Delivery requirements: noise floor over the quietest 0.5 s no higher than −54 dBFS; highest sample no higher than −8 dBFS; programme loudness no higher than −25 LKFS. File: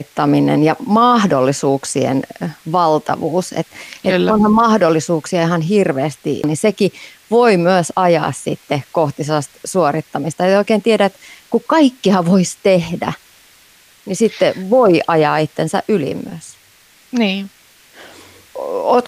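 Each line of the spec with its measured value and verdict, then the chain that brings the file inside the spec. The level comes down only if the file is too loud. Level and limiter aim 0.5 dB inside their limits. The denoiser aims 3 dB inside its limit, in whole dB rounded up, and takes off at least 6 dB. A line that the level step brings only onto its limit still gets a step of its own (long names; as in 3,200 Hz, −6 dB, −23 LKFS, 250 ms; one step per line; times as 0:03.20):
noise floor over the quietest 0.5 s −49 dBFS: out of spec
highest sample −2.0 dBFS: out of spec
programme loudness −15.5 LKFS: out of spec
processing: level −10 dB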